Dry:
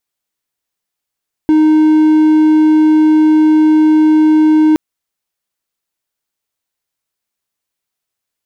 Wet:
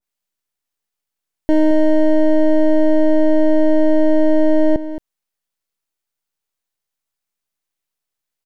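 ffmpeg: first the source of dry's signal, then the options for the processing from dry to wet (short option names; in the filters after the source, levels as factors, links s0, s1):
-f lavfi -i "aevalsrc='0.668*(1-4*abs(mod(310*t+0.25,1)-0.5))':d=3.27:s=44100"
-af "aeval=exprs='max(val(0),0)':c=same,aecho=1:1:221:0.224,adynamicequalizer=threshold=0.0141:dfrequency=1700:dqfactor=0.7:tfrequency=1700:tqfactor=0.7:attack=5:release=100:ratio=0.375:range=3:mode=cutabove:tftype=highshelf"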